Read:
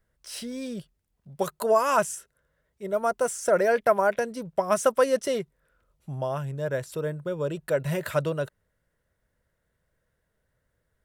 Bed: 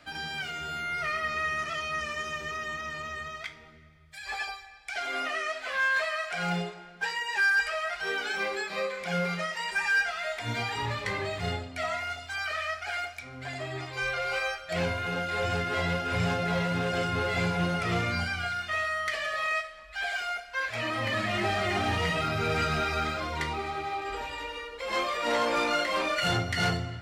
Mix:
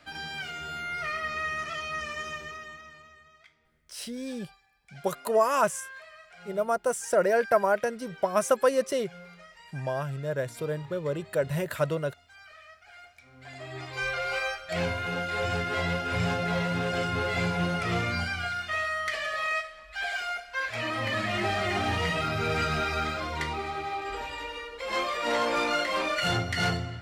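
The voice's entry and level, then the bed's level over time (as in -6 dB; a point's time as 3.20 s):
3.65 s, -1.5 dB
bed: 2.31 s -1.5 dB
3.22 s -18.5 dB
12.90 s -18.5 dB
13.94 s 0 dB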